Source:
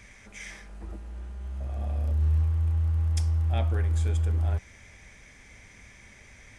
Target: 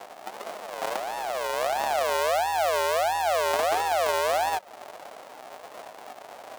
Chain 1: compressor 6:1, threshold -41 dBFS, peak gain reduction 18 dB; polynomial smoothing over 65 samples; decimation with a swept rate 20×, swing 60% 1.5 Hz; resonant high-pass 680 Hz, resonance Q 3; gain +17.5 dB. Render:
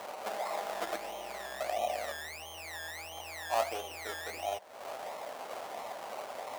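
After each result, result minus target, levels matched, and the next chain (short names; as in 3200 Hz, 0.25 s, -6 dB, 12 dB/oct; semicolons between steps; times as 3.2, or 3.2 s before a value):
decimation with a swept rate: distortion -10 dB; compressor: peak gain reduction +6 dB
compressor 6:1, threshold -41 dBFS, peak gain reduction 18 dB; polynomial smoothing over 65 samples; decimation with a swept rate 70×, swing 60% 1.5 Hz; resonant high-pass 680 Hz, resonance Q 3; gain +17.5 dB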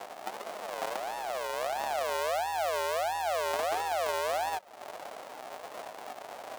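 compressor: peak gain reduction +6 dB
compressor 6:1, threshold -33.5 dBFS, peak gain reduction 12 dB; polynomial smoothing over 65 samples; decimation with a swept rate 70×, swing 60% 1.5 Hz; resonant high-pass 680 Hz, resonance Q 3; gain +17.5 dB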